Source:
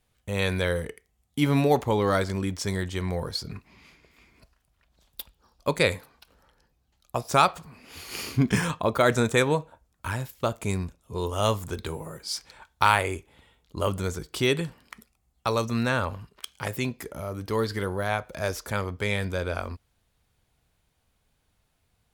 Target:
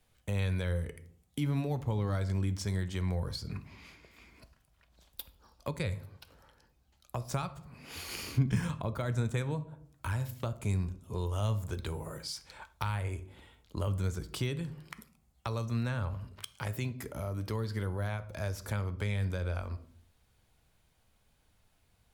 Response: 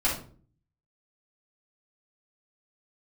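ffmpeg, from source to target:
-filter_complex "[0:a]asplit=2[s0][s1];[1:a]atrim=start_sample=2205[s2];[s1][s2]afir=irnorm=-1:irlink=0,volume=0.075[s3];[s0][s3]amix=inputs=2:normalize=0,acrossover=split=150[s4][s5];[s5]acompressor=threshold=0.0112:ratio=4[s6];[s4][s6]amix=inputs=2:normalize=0"

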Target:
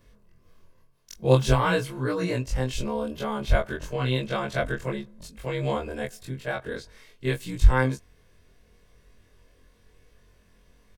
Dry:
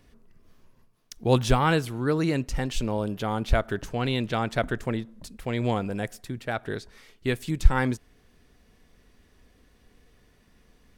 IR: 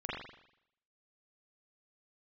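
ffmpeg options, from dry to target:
-af "afftfilt=real='re':imag='-im':win_size=2048:overlap=0.75,aecho=1:1:1.9:0.37,volume=1.5"

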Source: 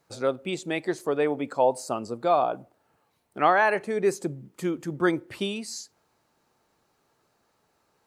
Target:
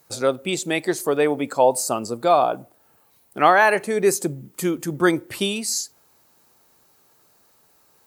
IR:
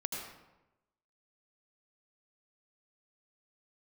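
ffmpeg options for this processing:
-af "aemphasis=mode=production:type=50fm,volume=1.88"

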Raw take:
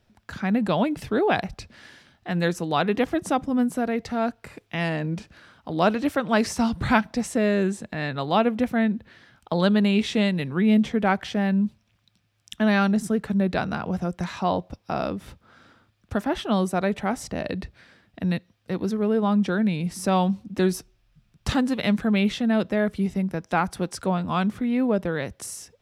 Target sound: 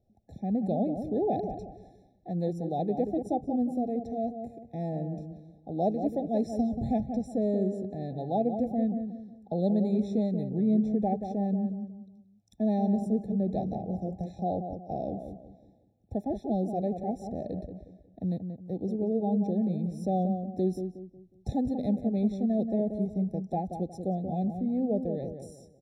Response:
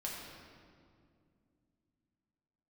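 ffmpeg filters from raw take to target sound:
-filter_complex "[0:a]firequalizer=gain_entry='entry(1000,0);entry(1900,-28);entry(4500,-12)':delay=0.05:min_phase=1,asplit=2[s0][s1];[s1]adelay=182,lowpass=f=1300:p=1,volume=0.447,asplit=2[s2][s3];[s3]adelay=182,lowpass=f=1300:p=1,volume=0.36,asplit=2[s4][s5];[s5]adelay=182,lowpass=f=1300:p=1,volume=0.36,asplit=2[s6][s7];[s7]adelay=182,lowpass=f=1300:p=1,volume=0.36[s8];[s0][s2][s4][s6][s8]amix=inputs=5:normalize=0,afftfilt=real='re*eq(mod(floor(b*sr/1024/860),2),0)':imag='im*eq(mod(floor(b*sr/1024/860),2),0)':win_size=1024:overlap=0.75,volume=0.501"

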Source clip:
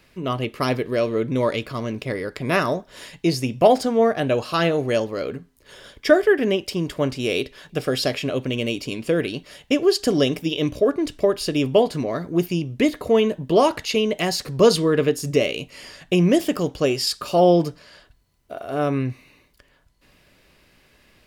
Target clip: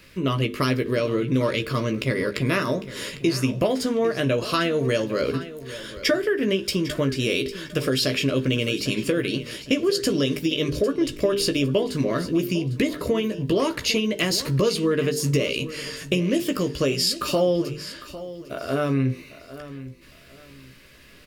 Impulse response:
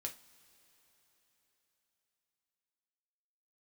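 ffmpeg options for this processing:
-filter_complex "[0:a]equalizer=f=770:w=2.8:g=-13.5,bandreject=f=50:t=h:w=6,bandreject=f=100:t=h:w=6,bandreject=f=150:t=h:w=6,bandreject=f=200:t=h:w=6,bandreject=f=250:t=h:w=6,bandreject=f=300:t=h:w=6,bandreject=f=350:t=h:w=6,bandreject=f=400:t=h:w=6,bandreject=f=450:t=h:w=6,acompressor=threshold=0.0501:ratio=6,asplit=2[s0][s1];[s1]adelay=15,volume=0.447[s2];[s0][s2]amix=inputs=2:normalize=0,aecho=1:1:802|1604|2406:0.178|0.0498|0.0139,asplit=2[s3][s4];[1:a]atrim=start_sample=2205,highshelf=f=12000:g=11.5[s5];[s4][s5]afir=irnorm=-1:irlink=0,volume=0.141[s6];[s3][s6]amix=inputs=2:normalize=0,volume=1.88"

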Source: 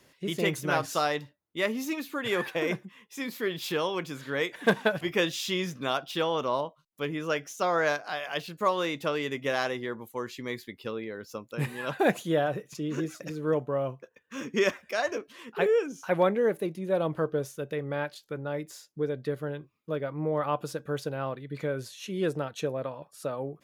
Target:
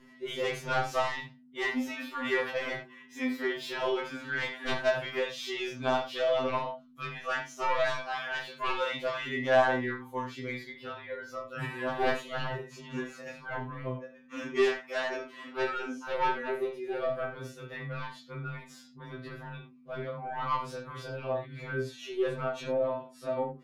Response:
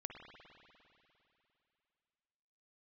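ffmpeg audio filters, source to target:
-filter_complex "[0:a]asettb=1/sr,asplit=3[s0][s1][s2];[s0]atrim=end=1.884[s3];[s1]atrim=start=1.88:end=2.44,asetpts=PTS-STARTPTS,afade=t=in:d=0.004:c=qsin,afade=t=out:st=0.556:d=0.004:c=qsin,highpass=f=160:w=0.5412,highpass=f=160:w=1.3066[s4];[s2]atrim=start=2.436[s5];[s3][s4]acrossfade=d=0.004:c1=hsin:c2=qsin[s6];[s6][s5]acrossfade=d=0.004:c1=qsin:c2=hsin,asettb=1/sr,asplit=3[s7][s8][s9];[s7]atrim=end=5.164[s10];[s8]atrim=start=5.16:end=5.58,asetpts=PTS-STARTPTS,afade=t=in:d=0.004:c=qsin,afade=t=out:st=0.416:d=0.004:c=qsin,acompressor=threshold=0.0316:ratio=2.5[s11];[s9]atrim=start=5.576[s12];[s10][s11]acrossfade=d=0.004:c1=hsin:c2=qsin[s13];[s13][s12]acrossfade=d=0.004:c1=qsin:c2=hsin,asettb=1/sr,asplit=3[s14][s15][s16];[s14]atrim=end=16.804[s17];[s15]atrim=start=16.8:end=17.64,asetpts=PTS-STARTPTS,afade=t=in:d=0.004:c=qsin,afade=t=out:st=0.836:d=0.004:c=qsin,equalizer=f=970:t=o:w=0.33:g=-13.5[s18];[s16]atrim=start=17.636[s19];[s17][s18]acrossfade=d=0.004:c1=hsin:c2=qsin[s20];[s20][s19]acrossfade=d=0.004:c1=qsin:c2=hsin,flanger=delay=18.5:depth=6:speed=0.26,aeval=exprs='val(0)+0.00224*(sin(2*PI*50*n/s)+sin(2*PI*2*50*n/s)/2+sin(2*PI*3*50*n/s)/3+sin(2*PI*4*50*n/s)/4+sin(2*PI*5*50*n/s)/5)':c=same,asplit=2[s21][s22];[s22]highpass=f=720:p=1,volume=2.82,asoftclip=type=tanh:threshold=0.224[s23];[s21][s23]amix=inputs=2:normalize=0,lowpass=f=1600:p=1,volume=0.501,aeval=exprs='0.178*sin(PI/2*2.51*val(0)/0.178)':c=same[s24];[1:a]atrim=start_sample=2205,afade=t=out:st=0.21:d=0.01,atrim=end_sample=9702,asetrate=79380,aresample=44100[s25];[s24][s25]afir=irnorm=-1:irlink=0,afftfilt=real='re*2.45*eq(mod(b,6),0)':imag='im*2.45*eq(mod(b,6),0)':win_size=2048:overlap=0.75,volume=1.41"

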